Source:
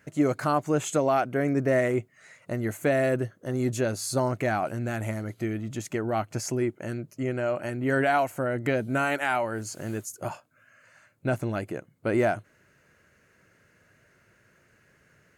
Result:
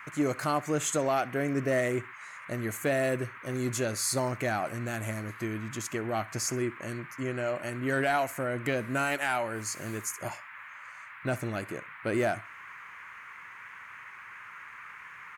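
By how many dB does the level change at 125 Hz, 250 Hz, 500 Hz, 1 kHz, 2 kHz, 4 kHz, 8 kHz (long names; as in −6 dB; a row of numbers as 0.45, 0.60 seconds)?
−4.5, −4.5, −4.5, −3.5, −1.0, +1.5, +3.0 decibels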